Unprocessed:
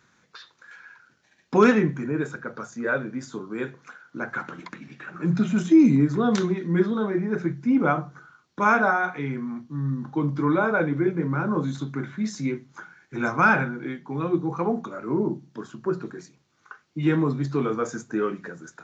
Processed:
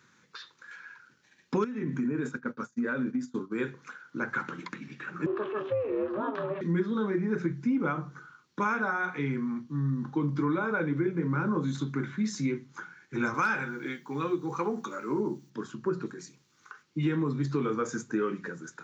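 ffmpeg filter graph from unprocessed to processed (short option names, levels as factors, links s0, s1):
-filter_complex "[0:a]asettb=1/sr,asplit=3[s0][s1][s2];[s0]atrim=end=1.644[s3];[s1]atrim=start=1.64:end=3.52,asetpts=PTS-STARTPTS,afade=t=in:d=0.004:c=qsin,afade=t=out:st=1.876:d=0.004:c=qsin,agate=range=0.0224:threshold=0.0224:ratio=3:release=100:detection=peak,equalizer=f=250:w=6.7:g=13,acompressor=threshold=0.0631:ratio=16:attack=3.2:release=140:knee=1:detection=peak[s4];[s2]atrim=start=3.516[s5];[s3][s4]acrossfade=d=0.004:c1=hsin:c2=qsin[s6];[s6][s5]acrossfade=d=0.004:c1=qsin:c2=hsin,asettb=1/sr,asplit=3[s7][s8][s9];[s7]atrim=end=5.264[s10];[s8]atrim=start=5.26:end=6.61,asetpts=PTS-STARTPTS,afade=t=in:d=0.004:c=qsin,afade=t=out:st=1.346:d=0.004:c=qsin,aeval=exprs='val(0)+0.5*0.0224*sgn(val(0))':c=same,aeval=exprs='val(0)*sin(2*PI*210*n/s)':c=same,highpass=f=170:w=0.5412,highpass=f=170:w=1.3066,equalizer=f=180:t=q:w=4:g=-9,equalizer=f=300:t=q:w=4:g=8,equalizer=f=440:t=q:w=4:g=-9,equalizer=f=670:t=q:w=4:g=8,equalizer=f=1100:t=q:w=4:g=8,equalizer=f=2100:t=q:w=4:g=-10,lowpass=f=2600:w=0.5412,lowpass=f=2600:w=1.3066[s11];[s9]atrim=start=6.606[s12];[s10][s11]acrossfade=d=0.004:c1=hsin:c2=qsin[s13];[s13][s12]acrossfade=d=0.004:c1=qsin:c2=hsin,asettb=1/sr,asplit=3[s14][s15][s16];[s14]atrim=end=13.344[s17];[s15]atrim=start=13.34:end=15.5,asetpts=PTS-STARTPTS,afade=t=in:d=0.004:c=qsin,afade=t=out:st=2.156:d=0.004:c=qsin,aemphasis=mode=production:type=bsi,asplit=2[s18][s19];[s19]adelay=14,volume=0.266[s20];[s18][s20]amix=inputs=2:normalize=0,atrim=end_sample=95256,asoftclip=type=hard:threshold=0.376[s21];[s16]atrim=start=15.496[s22];[s17][s21]acrossfade=d=0.004:c1=hsin:c2=qsin[s23];[s23][s22]acrossfade=d=0.004:c1=qsin:c2=hsin,asettb=1/sr,asplit=3[s24][s25][s26];[s24]atrim=end=16.064[s27];[s25]atrim=start=16.06:end=16.83,asetpts=PTS-STARTPTS,afade=t=in:d=0.004:c=qsin,afade=t=out:st=0.766:d=0.004:c=qsin,highshelf=f=4900:g=8.5,acompressor=threshold=0.00891:ratio=2:attack=3.2:release=140:knee=1:detection=peak[s28];[s26]atrim=start=16.826[s29];[s27][s28]acrossfade=d=0.004:c1=hsin:c2=qsin[s30];[s30][s29]acrossfade=d=0.004:c1=qsin:c2=hsin,highpass=95,acompressor=threshold=0.0631:ratio=6,equalizer=f=680:w=4.1:g=-12.5"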